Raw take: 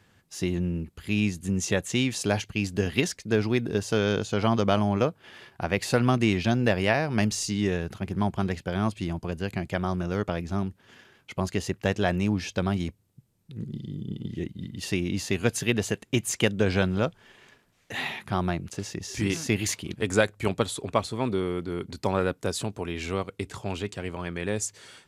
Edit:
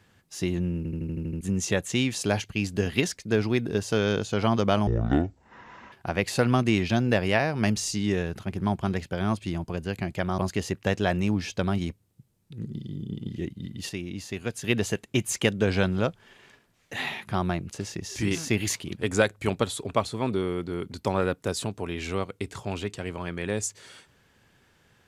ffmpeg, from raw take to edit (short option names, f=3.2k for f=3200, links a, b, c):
-filter_complex "[0:a]asplit=14[a][b][c][d][e][f][g][h][i][j][k][l][m][n];[a]atrim=end=0.852[o];[b]atrim=start=0.768:end=0.852[p];[c]atrim=start=0.768:end=0.852[q];[d]atrim=start=0.768:end=0.852[r];[e]atrim=start=0.768:end=0.852[s];[f]atrim=start=0.768:end=0.852[t];[g]atrim=start=0.768:end=0.852[u];[h]atrim=start=0.768:end=0.852[v];[i]atrim=start=1.408:end=4.874[w];[j]atrim=start=4.87:end=5.47,asetpts=PTS-STARTPTS,asetrate=25137,aresample=44100,atrim=end_sample=46421,asetpts=PTS-STARTPTS[x];[k]atrim=start=5.466:end=9.932[y];[l]atrim=start=11.368:end=14.882[z];[m]atrim=start=14.878:end=15.632,asetpts=PTS-STARTPTS,volume=-7dB[aa];[n]atrim=start=15.628[ab];[o][p]acrossfade=d=0.004:c1=hsin:c2=hsin[ac];[ac][q]acrossfade=d=0.004:c1=hsin:c2=hsin[ad];[ad][r]acrossfade=d=0.004:c1=hsin:c2=hsin[ae];[ae][s]acrossfade=d=0.004:c1=hsin:c2=hsin[af];[af][t]acrossfade=d=0.004:c1=hsin:c2=hsin[ag];[ag][u]acrossfade=d=0.004:c1=hsin:c2=hsin[ah];[ah][v]acrossfade=d=0.004:c1=hsin:c2=hsin[ai];[ai][w]acrossfade=d=0.004:c1=hsin:c2=hsin[aj];[aj][x]acrossfade=d=0.004:c1=hsin:c2=hsin[ak];[ak][y]acrossfade=d=0.004:c1=hsin:c2=hsin[al];[al][z]acrossfade=d=0.004:c1=hsin:c2=hsin[am];[am][aa]acrossfade=d=0.004:c1=hsin:c2=hsin[an];[an][ab]acrossfade=d=0.004:c1=hsin:c2=hsin"